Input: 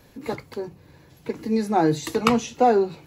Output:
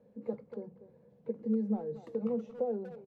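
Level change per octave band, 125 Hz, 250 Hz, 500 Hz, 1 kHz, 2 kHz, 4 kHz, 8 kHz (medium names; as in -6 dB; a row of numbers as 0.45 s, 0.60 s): -12.5 dB, -10.0 dB, -12.5 dB, -26.0 dB, under -30 dB, under -35 dB, under -40 dB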